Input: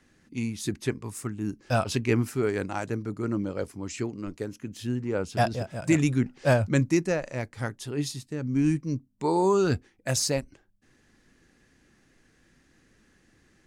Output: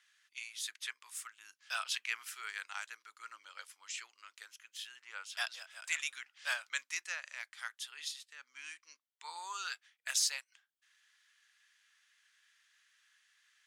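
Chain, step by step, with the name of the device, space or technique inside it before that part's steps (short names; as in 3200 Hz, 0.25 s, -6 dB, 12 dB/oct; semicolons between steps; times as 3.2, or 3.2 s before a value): 8–9.54 high shelf 5900 Hz -5.5 dB; headphones lying on a table (HPF 1300 Hz 24 dB/oct; bell 3300 Hz +7.5 dB 0.42 oct); gain -4 dB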